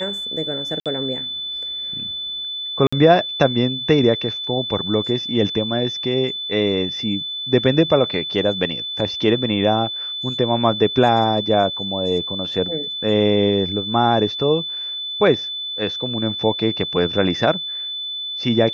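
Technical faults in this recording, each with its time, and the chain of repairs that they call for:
whistle 3,500 Hz −25 dBFS
0:00.80–0:00.86: drop-out 57 ms
0:02.87–0:02.92: drop-out 55 ms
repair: notch filter 3,500 Hz, Q 30
repair the gap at 0:00.80, 57 ms
repair the gap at 0:02.87, 55 ms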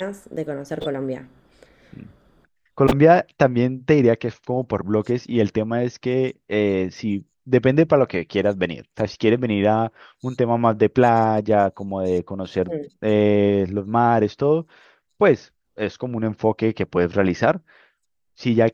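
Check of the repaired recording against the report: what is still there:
none of them is left

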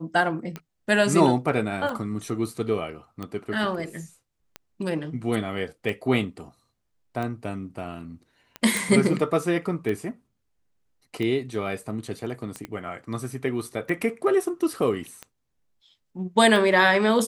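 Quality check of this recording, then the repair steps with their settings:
scratch tick 45 rpm −19 dBFS
0:08.77: click
0:12.65: click −20 dBFS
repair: click removal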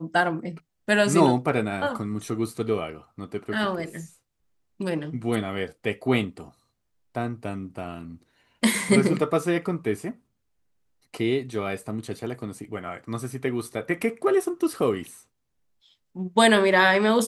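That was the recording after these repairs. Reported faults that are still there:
0:12.65: click

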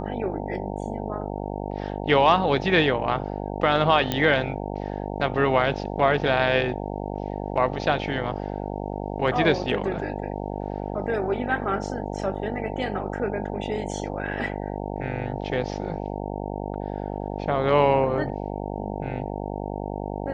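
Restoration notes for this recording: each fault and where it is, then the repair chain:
mains buzz 50 Hz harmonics 18 −31 dBFS
0:04.12: click −9 dBFS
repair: click removal
hum removal 50 Hz, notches 18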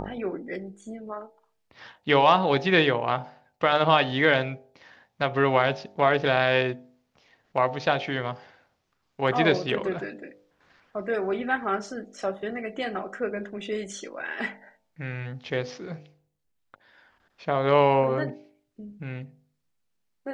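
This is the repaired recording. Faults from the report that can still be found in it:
none of them is left

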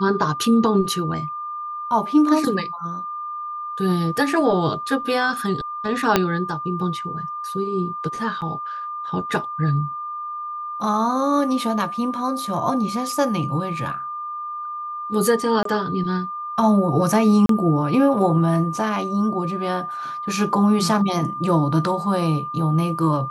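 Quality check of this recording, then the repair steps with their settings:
whistle 1,200 Hz −27 dBFS
0:06.16: click −1 dBFS
0:08.41–0:08.42: drop-out 8.5 ms
0:15.63–0:15.65: drop-out 23 ms
0:17.46–0:17.49: drop-out 33 ms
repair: click removal
notch filter 1,200 Hz, Q 30
repair the gap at 0:08.41, 8.5 ms
repair the gap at 0:15.63, 23 ms
repair the gap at 0:17.46, 33 ms

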